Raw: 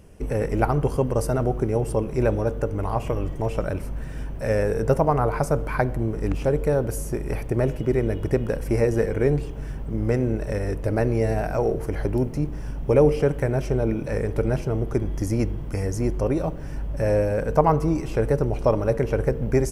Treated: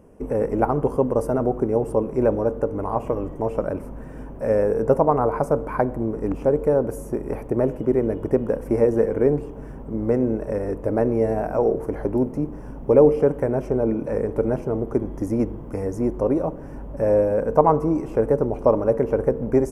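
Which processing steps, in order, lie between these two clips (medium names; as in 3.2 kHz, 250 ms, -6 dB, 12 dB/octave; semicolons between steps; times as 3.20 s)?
graphic EQ 250/500/1000/4000 Hz +10/+8/+9/-9 dB; trim -7.5 dB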